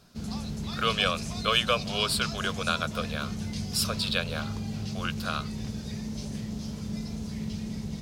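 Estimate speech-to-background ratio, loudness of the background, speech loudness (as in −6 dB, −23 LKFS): 6.0 dB, −35.0 LKFS, −29.0 LKFS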